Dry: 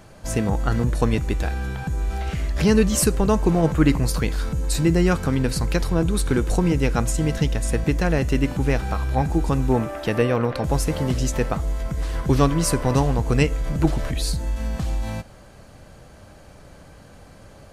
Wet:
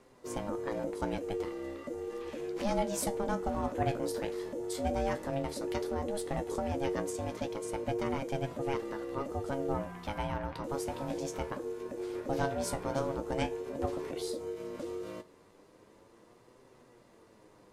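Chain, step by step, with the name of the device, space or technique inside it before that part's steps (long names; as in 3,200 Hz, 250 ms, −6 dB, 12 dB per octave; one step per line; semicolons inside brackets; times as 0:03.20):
alien voice (ring modulation 410 Hz; flanger 0.12 Hz, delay 7.6 ms, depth 9.9 ms, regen +54%)
level −7.5 dB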